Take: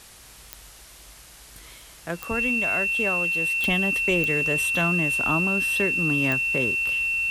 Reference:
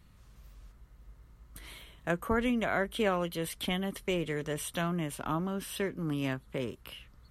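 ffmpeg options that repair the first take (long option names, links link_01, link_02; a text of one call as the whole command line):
ffmpeg -i in.wav -af "adeclick=threshold=4,bandreject=frequency=2700:width=30,afwtdn=0.005,asetnsamples=nb_out_samples=441:pad=0,asendcmd='3.64 volume volume -6.5dB',volume=0dB" out.wav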